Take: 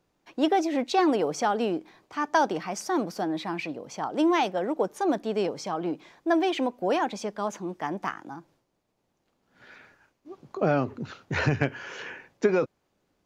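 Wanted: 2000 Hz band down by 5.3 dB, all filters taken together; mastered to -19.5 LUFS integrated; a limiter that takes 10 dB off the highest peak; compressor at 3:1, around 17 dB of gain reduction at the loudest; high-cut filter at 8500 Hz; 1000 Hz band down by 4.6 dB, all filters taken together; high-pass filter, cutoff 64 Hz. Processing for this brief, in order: HPF 64 Hz; LPF 8500 Hz; bell 1000 Hz -5.5 dB; bell 2000 Hz -5 dB; compressor 3:1, threshold -43 dBFS; gain +27 dB; limiter -9.5 dBFS

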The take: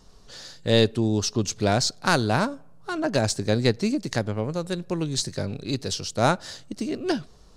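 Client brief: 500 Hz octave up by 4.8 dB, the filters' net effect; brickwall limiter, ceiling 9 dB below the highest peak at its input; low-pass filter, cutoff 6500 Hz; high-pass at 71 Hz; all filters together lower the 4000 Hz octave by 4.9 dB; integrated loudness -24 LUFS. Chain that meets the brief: HPF 71 Hz; LPF 6500 Hz; bell 500 Hz +6 dB; bell 4000 Hz -5 dB; gain +2.5 dB; limiter -10.5 dBFS

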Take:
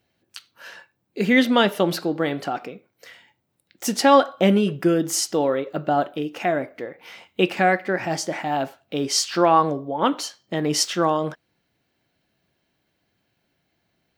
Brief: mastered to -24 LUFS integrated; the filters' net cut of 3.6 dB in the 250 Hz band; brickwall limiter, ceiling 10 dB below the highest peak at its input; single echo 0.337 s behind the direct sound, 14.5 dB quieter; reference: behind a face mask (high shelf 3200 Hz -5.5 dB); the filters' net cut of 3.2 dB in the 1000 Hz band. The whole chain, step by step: bell 250 Hz -4.5 dB; bell 1000 Hz -3.5 dB; limiter -15 dBFS; high shelf 3200 Hz -5.5 dB; echo 0.337 s -14.5 dB; gain +3.5 dB

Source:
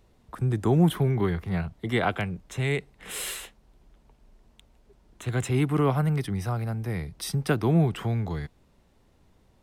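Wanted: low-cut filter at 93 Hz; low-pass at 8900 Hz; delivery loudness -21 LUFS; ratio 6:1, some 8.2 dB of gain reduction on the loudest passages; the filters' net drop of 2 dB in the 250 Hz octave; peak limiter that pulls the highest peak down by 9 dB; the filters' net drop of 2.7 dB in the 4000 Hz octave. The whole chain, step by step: HPF 93 Hz; LPF 8900 Hz; bell 250 Hz -3 dB; bell 4000 Hz -3.5 dB; compressor 6:1, threshold -27 dBFS; gain +14 dB; limiter -11 dBFS

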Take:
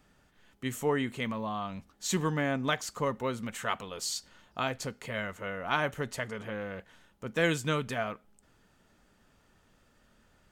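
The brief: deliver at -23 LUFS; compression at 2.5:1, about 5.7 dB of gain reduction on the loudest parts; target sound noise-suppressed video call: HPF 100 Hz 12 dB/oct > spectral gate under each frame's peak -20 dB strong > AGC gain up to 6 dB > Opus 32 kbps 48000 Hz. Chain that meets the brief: compressor 2.5:1, threshold -32 dBFS; HPF 100 Hz 12 dB/oct; spectral gate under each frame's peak -20 dB strong; AGC gain up to 6 dB; gain +14.5 dB; Opus 32 kbps 48000 Hz

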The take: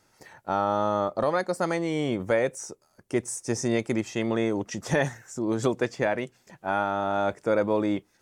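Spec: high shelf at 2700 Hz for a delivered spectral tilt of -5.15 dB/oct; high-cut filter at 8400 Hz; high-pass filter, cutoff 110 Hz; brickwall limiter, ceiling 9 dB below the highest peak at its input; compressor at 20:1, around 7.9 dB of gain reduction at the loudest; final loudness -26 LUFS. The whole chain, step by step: HPF 110 Hz; LPF 8400 Hz; high shelf 2700 Hz -8 dB; compressor 20:1, threshold -27 dBFS; gain +10.5 dB; limiter -14 dBFS

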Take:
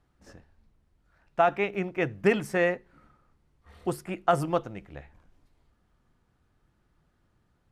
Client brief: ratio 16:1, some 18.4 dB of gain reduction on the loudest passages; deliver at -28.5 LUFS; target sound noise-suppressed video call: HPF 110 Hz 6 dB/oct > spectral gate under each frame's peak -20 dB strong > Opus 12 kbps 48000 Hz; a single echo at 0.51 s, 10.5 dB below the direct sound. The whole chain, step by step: compressor 16:1, threshold -35 dBFS; HPF 110 Hz 6 dB/oct; echo 0.51 s -10.5 dB; spectral gate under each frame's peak -20 dB strong; gain +15 dB; Opus 12 kbps 48000 Hz

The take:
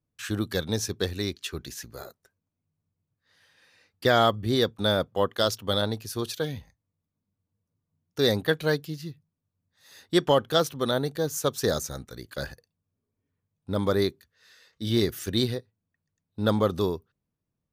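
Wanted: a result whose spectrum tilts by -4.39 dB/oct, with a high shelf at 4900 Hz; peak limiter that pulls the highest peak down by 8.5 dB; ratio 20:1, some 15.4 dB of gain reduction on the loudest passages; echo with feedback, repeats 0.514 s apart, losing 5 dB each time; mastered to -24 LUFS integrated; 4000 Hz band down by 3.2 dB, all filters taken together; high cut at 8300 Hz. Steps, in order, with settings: LPF 8300 Hz; bell 4000 Hz -6.5 dB; high shelf 4900 Hz +7 dB; compressor 20:1, threshold -31 dBFS; limiter -27 dBFS; feedback echo 0.514 s, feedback 56%, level -5 dB; gain +15.5 dB

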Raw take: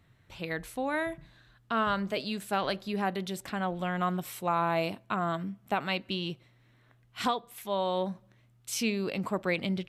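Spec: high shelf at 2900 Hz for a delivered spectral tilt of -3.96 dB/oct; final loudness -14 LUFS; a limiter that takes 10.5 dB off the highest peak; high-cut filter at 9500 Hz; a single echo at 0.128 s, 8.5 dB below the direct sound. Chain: LPF 9500 Hz; high shelf 2900 Hz +9 dB; limiter -24.5 dBFS; echo 0.128 s -8.5 dB; gain +20.5 dB

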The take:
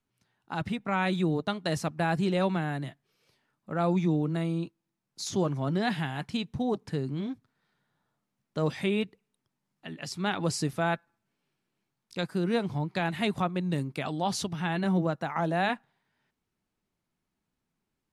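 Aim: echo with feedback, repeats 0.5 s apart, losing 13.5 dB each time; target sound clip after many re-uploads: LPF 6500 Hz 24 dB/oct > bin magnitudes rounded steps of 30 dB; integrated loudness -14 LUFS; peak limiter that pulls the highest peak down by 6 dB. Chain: limiter -20 dBFS; LPF 6500 Hz 24 dB/oct; feedback echo 0.5 s, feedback 21%, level -13.5 dB; bin magnitudes rounded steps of 30 dB; gain +18 dB

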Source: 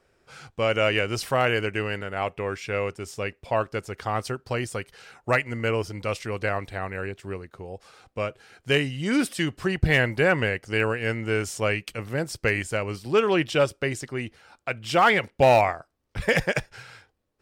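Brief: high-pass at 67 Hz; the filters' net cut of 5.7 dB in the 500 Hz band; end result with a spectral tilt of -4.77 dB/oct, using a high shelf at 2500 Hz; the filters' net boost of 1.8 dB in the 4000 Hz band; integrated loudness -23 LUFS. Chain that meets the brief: HPF 67 Hz; bell 500 Hz -7 dB; high shelf 2500 Hz -4 dB; bell 4000 Hz +7 dB; gain +4.5 dB

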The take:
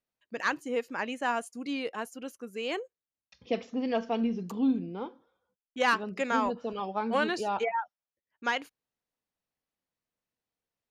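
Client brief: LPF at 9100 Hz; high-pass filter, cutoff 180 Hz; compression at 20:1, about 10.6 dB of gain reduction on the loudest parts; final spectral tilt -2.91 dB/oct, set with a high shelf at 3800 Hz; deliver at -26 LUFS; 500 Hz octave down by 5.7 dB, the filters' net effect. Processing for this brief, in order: HPF 180 Hz; LPF 9100 Hz; bell 500 Hz -6.5 dB; high shelf 3800 Hz -8.5 dB; compressor 20:1, threshold -34 dBFS; gain +14.5 dB

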